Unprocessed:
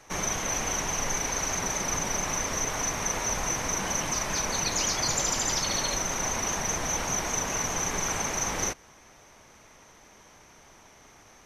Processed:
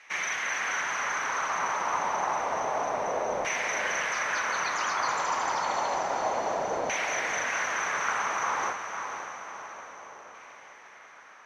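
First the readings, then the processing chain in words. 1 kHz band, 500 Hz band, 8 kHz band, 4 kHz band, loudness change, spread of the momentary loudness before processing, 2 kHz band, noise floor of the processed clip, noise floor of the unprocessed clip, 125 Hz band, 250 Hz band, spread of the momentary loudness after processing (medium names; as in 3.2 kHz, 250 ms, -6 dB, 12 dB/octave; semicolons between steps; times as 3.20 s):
+5.5 dB, +2.5 dB, -11.0 dB, -6.0 dB, -1.5 dB, 3 LU, +5.0 dB, -51 dBFS, -55 dBFS, -15.0 dB, -8.0 dB, 14 LU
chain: LFO band-pass saw down 0.29 Hz 530–2200 Hz; echo that smears into a reverb 531 ms, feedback 54%, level -7 dB; trim +9 dB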